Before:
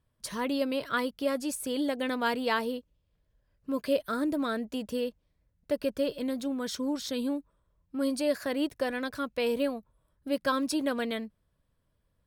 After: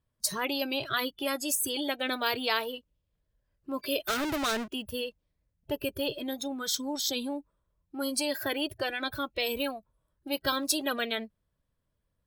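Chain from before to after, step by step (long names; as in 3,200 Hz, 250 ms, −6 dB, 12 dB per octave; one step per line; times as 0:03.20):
noise reduction from a noise print of the clip's start 22 dB
0:04.07–0:04.68: power curve on the samples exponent 0.7
every bin compressed towards the loudest bin 2 to 1
level +3 dB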